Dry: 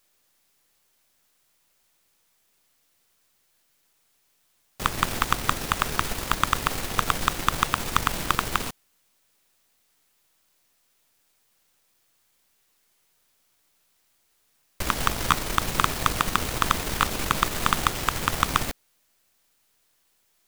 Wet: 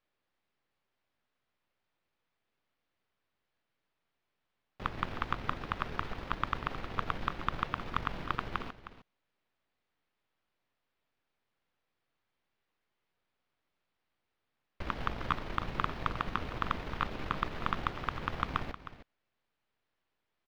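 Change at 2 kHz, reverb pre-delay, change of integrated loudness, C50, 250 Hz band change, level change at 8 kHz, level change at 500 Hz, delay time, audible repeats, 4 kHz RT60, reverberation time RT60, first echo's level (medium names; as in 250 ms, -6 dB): -11.0 dB, no reverb, -11.5 dB, no reverb, -8.5 dB, under -30 dB, -9.0 dB, 312 ms, 1, no reverb, no reverb, -13.0 dB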